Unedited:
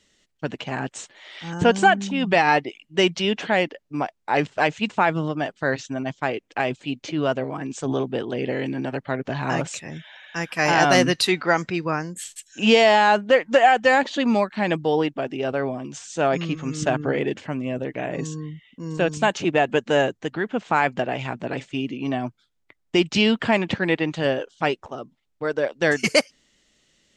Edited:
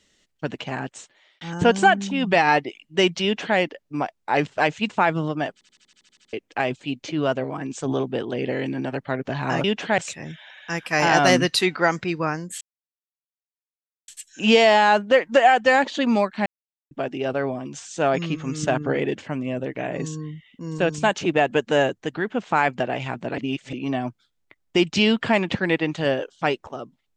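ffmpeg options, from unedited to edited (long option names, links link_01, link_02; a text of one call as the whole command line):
ffmpeg -i in.wav -filter_complex "[0:a]asplit=19[link_01][link_02][link_03][link_04][link_05][link_06][link_07][link_08][link_09][link_10][link_11][link_12][link_13][link_14][link_15][link_16][link_17][link_18][link_19];[link_01]atrim=end=1.41,asetpts=PTS-STARTPTS,afade=type=out:start_time=0.67:duration=0.74[link_20];[link_02]atrim=start=1.41:end=5.612,asetpts=PTS-STARTPTS,afade=type=in:duration=0.004:curve=hsin[link_21];[link_03]atrim=start=5.528:end=5.612[link_22];[link_04]atrim=start=5.528:end=5.612[link_23];[link_05]atrim=start=5.528:end=5.612[link_24];[link_06]atrim=start=5.528:end=5.612[link_25];[link_07]atrim=start=5.528:end=5.612[link_26];[link_08]atrim=start=5.528:end=5.612[link_27];[link_09]atrim=start=5.528:end=5.612[link_28];[link_10]atrim=start=5.528:end=5.612[link_29];[link_11]atrim=start=5.528:end=5.612[link_30];[link_12]atrim=start=6.328:end=9.642[link_31];[link_13]atrim=start=3.238:end=3.582[link_32];[link_14]atrim=start=9.638:end=12.27,asetpts=PTS-STARTPTS,afade=type=out:start_time=2.628:duration=0.004:curve=hsin,apad=pad_dur=1.47[link_33];[link_15]atrim=start=12.27:end=14.65,asetpts=PTS-STARTPTS,afade=type=in:duration=0.004:curve=hsin,afade=type=out:start_time=2.376:duration=0.004:curve=hsin[link_34];[link_16]atrim=start=14.65:end=15.1,asetpts=PTS-STARTPTS,volume=0[link_35];[link_17]atrim=start=15.1:end=21.572,asetpts=PTS-STARTPTS,afade=type=in:duration=0.004:curve=hsin[link_36];[link_18]atrim=start=21.568:end=21.922,asetpts=PTS-STARTPTS,areverse[link_37];[link_19]atrim=start=21.918[link_38];[link_20][link_21]concat=n=2:v=0:a=1[link_39];[link_39][link_22]acrossfade=duration=0.004:curve1=hsin:curve2=hsin[link_40];[link_40][link_23]acrossfade=duration=0.004:curve1=hsin:curve2=hsin[link_41];[link_41][link_24]acrossfade=duration=0.004:curve1=hsin:curve2=hsin[link_42];[link_42][link_25]acrossfade=duration=0.004:curve1=hsin:curve2=hsin[link_43];[link_43][link_26]acrossfade=duration=0.004:curve1=hsin:curve2=hsin[link_44];[link_44][link_27]acrossfade=duration=0.004:curve1=hsin:curve2=hsin[link_45];[link_45][link_28]acrossfade=duration=0.004:curve1=hsin:curve2=hsin[link_46];[link_46][link_29]acrossfade=duration=0.004:curve1=hsin:curve2=hsin[link_47];[link_47][link_30]acrossfade=duration=0.004:curve1=hsin:curve2=hsin[link_48];[link_48][link_31]acrossfade=duration=0.004:curve1=hsin:curve2=hsin[link_49];[link_49][link_32]acrossfade=duration=0.004:curve1=hsin:curve2=hsin[link_50];[link_33][link_34][link_35][link_36]concat=n=4:v=0:a=1[link_51];[link_50][link_51]acrossfade=duration=0.004:curve1=hsin:curve2=hsin[link_52];[link_52][link_37]acrossfade=duration=0.004:curve1=hsin:curve2=hsin[link_53];[link_53][link_38]acrossfade=duration=0.004:curve1=hsin:curve2=hsin" out.wav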